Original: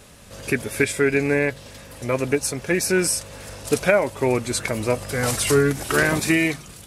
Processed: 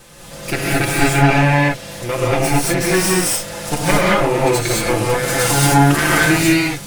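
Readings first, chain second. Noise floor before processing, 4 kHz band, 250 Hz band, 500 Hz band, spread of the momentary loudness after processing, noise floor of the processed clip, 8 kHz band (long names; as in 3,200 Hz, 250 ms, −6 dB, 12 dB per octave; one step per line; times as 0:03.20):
−43 dBFS, +8.5 dB, +6.5 dB, +3.0 dB, 8 LU, −34 dBFS, +6.0 dB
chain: lower of the sound and its delayed copy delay 5.8 ms
in parallel at +1.5 dB: downward compressor, threshold −28 dBFS, peak gain reduction 14.5 dB
on the sum: reverb whose tail is shaped and stops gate 250 ms rising, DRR −6 dB
level −2.5 dB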